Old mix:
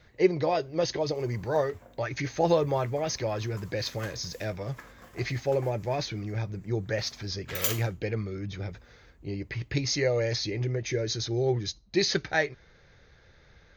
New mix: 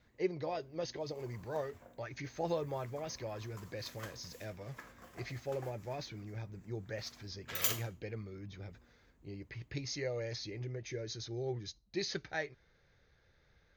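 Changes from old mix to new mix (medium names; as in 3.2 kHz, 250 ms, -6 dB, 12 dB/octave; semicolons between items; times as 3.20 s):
speech -12.0 dB; background -4.0 dB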